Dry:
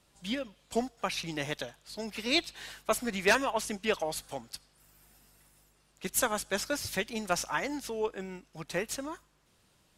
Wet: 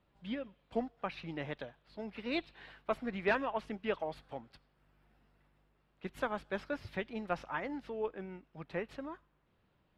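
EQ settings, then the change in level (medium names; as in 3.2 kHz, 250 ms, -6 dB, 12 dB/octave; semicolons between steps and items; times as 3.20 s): distance through air 420 m; -3.5 dB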